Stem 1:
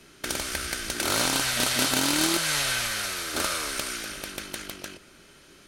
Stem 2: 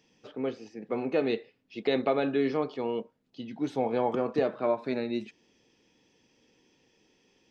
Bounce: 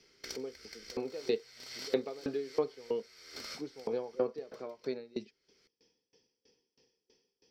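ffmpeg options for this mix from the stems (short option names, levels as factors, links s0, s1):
-filter_complex "[0:a]equalizer=f=2100:t=o:w=0.27:g=11.5,volume=0.119[s0];[1:a]aeval=exprs='val(0)*pow(10,-29*if(lt(mod(3.1*n/s,1),2*abs(3.1)/1000),1-mod(3.1*n/s,1)/(2*abs(3.1)/1000),(mod(3.1*n/s,1)-2*abs(3.1)/1000)/(1-2*abs(3.1)/1000))/20)':c=same,volume=0.631,asplit=2[s1][s2];[s2]apad=whole_len=250135[s3];[s0][s3]sidechaincompress=threshold=0.00126:ratio=8:attack=6.7:release=309[s4];[s4][s1]amix=inputs=2:normalize=0,superequalizer=7b=2.51:13b=1.41:14b=3.98:16b=0.355"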